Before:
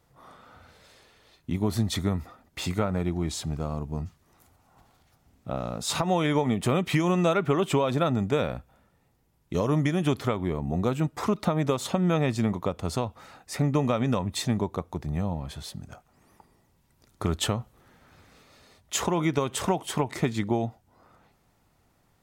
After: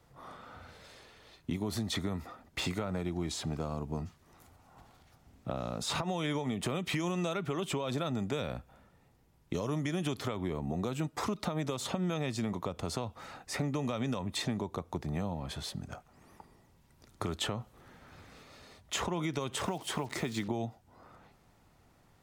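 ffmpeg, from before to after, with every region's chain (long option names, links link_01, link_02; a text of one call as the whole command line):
ffmpeg -i in.wav -filter_complex "[0:a]asettb=1/sr,asplit=3[link_01][link_02][link_03];[link_01]atrim=end=19.554[link_04];[link_02]atrim=start=19.55:end=20.48,asetpts=PTS-STARTPTS,afade=type=in:duration=0.004:curve=qsin,afade=type=out:start_time=0.926:duration=0.004:curve=qsin,highpass=frequency=110:poles=1,acrusher=bits=7:mix=0:aa=0.5[link_05];[link_03]atrim=start=20.476[link_06];[link_04][link_05]acrossfade=duration=0.004:curve1=hsin:curve2=qsin[link_07];[link_07][link_06]acrossfade=duration=0.004:curve1=qsin:curve2=hsin,highshelf=frequency=8800:gain=-6,alimiter=limit=-17.5dB:level=0:latency=1:release=81,acrossover=split=190|3300[link_08][link_09][link_10];[link_08]acompressor=threshold=-43dB:ratio=4[link_11];[link_09]acompressor=threshold=-36dB:ratio=4[link_12];[link_10]acompressor=threshold=-41dB:ratio=4[link_13];[link_11][link_12][link_13]amix=inputs=3:normalize=0,volume=2dB" out.wav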